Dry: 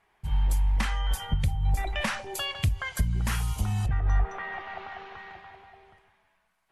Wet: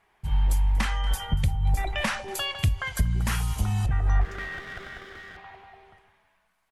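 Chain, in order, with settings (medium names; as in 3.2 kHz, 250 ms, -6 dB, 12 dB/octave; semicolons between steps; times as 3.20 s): 4.21–5.37 s: comb filter that takes the minimum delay 0.56 ms; delay 236 ms -20.5 dB; trim +2 dB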